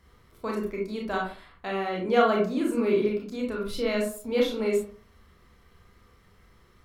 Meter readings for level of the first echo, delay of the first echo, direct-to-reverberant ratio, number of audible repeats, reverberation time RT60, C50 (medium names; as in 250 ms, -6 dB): no echo, no echo, -2.5 dB, no echo, 0.45 s, 4.0 dB